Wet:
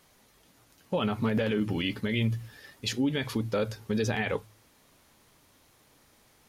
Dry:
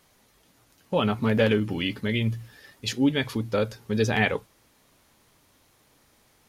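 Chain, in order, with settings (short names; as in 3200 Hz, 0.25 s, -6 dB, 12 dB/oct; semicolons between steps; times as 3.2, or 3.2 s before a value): de-hum 53.49 Hz, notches 2; limiter -19 dBFS, peak gain reduction 10.5 dB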